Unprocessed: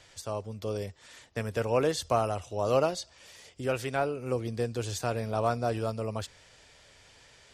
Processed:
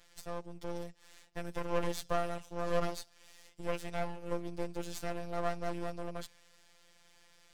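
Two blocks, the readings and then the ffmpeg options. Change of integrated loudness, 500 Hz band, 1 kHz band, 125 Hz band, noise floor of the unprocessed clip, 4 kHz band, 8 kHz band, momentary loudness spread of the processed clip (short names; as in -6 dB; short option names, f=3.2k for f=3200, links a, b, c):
-8.0 dB, -8.5 dB, -7.0 dB, -10.5 dB, -58 dBFS, -7.5 dB, -8.5 dB, 12 LU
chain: -af "highpass=f=69:w=0.5412,highpass=f=69:w=1.3066,aeval=exprs='max(val(0),0)':c=same,afftfilt=real='hypot(re,im)*cos(PI*b)':imag='0':win_size=1024:overlap=0.75"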